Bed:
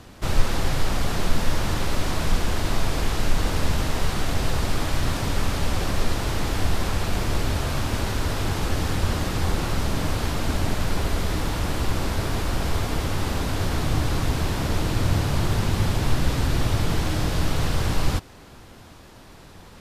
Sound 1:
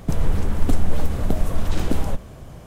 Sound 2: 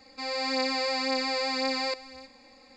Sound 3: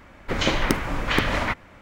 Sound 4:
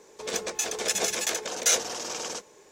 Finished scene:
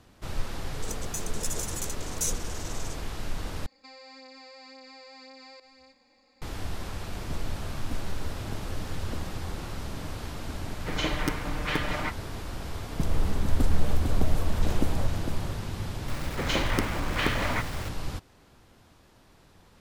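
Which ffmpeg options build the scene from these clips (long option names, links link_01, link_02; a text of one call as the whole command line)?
ffmpeg -i bed.wav -i cue0.wav -i cue1.wav -i cue2.wav -i cue3.wav -filter_complex "[1:a]asplit=2[link_01][link_02];[3:a]asplit=2[link_03][link_04];[0:a]volume=-11.5dB[link_05];[4:a]firequalizer=gain_entry='entry(270,0);entry(910,-20);entry(8500,2)':delay=0.05:min_phase=1[link_06];[2:a]acompressor=threshold=-38dB:ratio=12:attack=24:release=70:knee=1:detection=rms[link_07];[link_03]aecho=1:1:6.6:0.72[link_08];[link_02]aecho=1:1:453:0.531[link_09];[link_04]aeval=exprs='val(0)+0.5*0.0376*sgn(val(0))':channel_layout=same[link_10];[link_05]asplit=2[link_11][link_12];[link_11]atrim=end=3.664[link_13];[link_07]atrim=end=2.76,asetpts=PTS-STARTPTS,volume=-9.5dB[link_14];[link_12]atrim=start=6.416[link_15];[link_06]atrim=end=2.71,asetpts=PTS-STARTPTS,volume=-3.5dB,afade=type=in:duration=0.004:curve=hsin,afade=type=out:start_time=2.706:duration=0.004:curve=hsin,adelay=550[link_16];[link_01]atrim=end=2.66,asetpts=PTS-STARTPTS,volume=-16.5dB,afade=type=in:duration=0.004:curve=hsin,afade=type=out:start_time=2.656:duration=0.004:curve=hsin,adelay=318402S[link_17];[link_08]atrim=end=1.81,asetpts=PTS-STARTPTS,volume=-9dB,afade=type=in:duration=0.004:curve=hsin,afade=type=out:start_time=1.806:duration=0.004:curve=hsin,adelay=10570[link_18];[link_09]atrim=end=2.66,asetpts=PTS-STARTPTS,volume=-6dB,afade=type=in:duration=0.004:curve=hsin,afade=type=out:start_time=2.656:duration=0.004:curve=hsin,adelay=12910[link_19];[link_10]atrim=end=1.81,asetpts=PTS-STARTPTS,volume=-6.5dB,afade=type=in:duration=0.004:curve=hsin,afade=type=out:start_time=1.806:duration=0.004:curve=hsin,adelay=16080[link_20];[link_13][link_14]acrossfade=duration=0.004:curve1=hsin:curve2=hsin[link_21];[link_21][link_15]acrossfade=duration=0.004:curve1=hsin:curve2=hsin[link_22];[link_22][link_16][link_17][link_18][link_19][link_20]amix=inputs=6:normalize=0" out.wav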